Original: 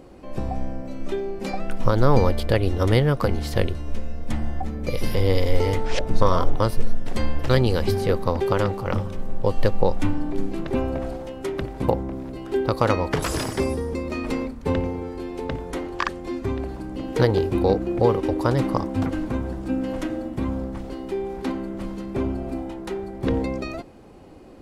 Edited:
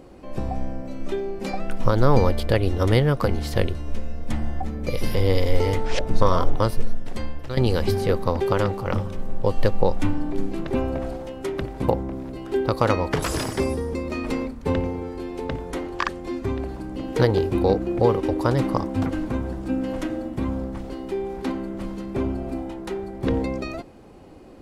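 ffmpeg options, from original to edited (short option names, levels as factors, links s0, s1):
-filter_complex "[0:a]asplit=2[s0][s1];[s0]atrim=end=7.57,asetpts=PTS-STARTPTS,afade=t=out:st=6.65:d=0.92:silence=0.223872[s2];[s1]atrim=start=7.57,asetpts=PTS-STARTPTS,afade=t=in:d=0.004:c=hsin:silence=0.223872[s3];[s2][s3]concat=n=2:v=0:a=1"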